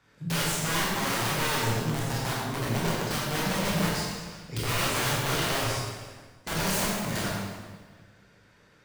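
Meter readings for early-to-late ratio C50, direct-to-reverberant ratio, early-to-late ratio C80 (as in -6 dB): -2.0 dB, -6.5 dB, 0.5 dB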